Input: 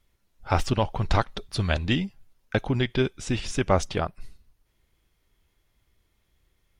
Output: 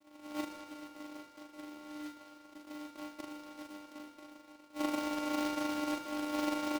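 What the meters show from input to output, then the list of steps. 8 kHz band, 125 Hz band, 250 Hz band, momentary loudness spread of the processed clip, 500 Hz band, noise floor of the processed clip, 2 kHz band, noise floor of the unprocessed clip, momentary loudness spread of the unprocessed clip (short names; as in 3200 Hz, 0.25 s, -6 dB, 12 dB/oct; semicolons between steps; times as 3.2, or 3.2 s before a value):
-8.5 dB, -36.0 dB, -6.0 dB, 17 LU, -13.0 dB, -59 dBFS, -11.5 dB, -72 dBFS, 6 LU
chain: spectral whitening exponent 0.1; recorder AGC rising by 71 dB/s; inverse Chebyshev low-pass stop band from 3200 Hz, stop band 80 dB; limiter -25.5 dBFS, peak gain reduction 9 dB; flipped gate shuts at -35 dBFS, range -28 dB; vocoder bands 4, saw 299 Hz; sample-and-hold 26×; doubler 40 ms -2.5 dB; on a send: thinning echo 78 ms, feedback 77%, high-pass 160 Hz, level -10.5 dB; on the sum: noise-modulated delay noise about 2700 Hz, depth 0.042 ms; gain +14.5 dB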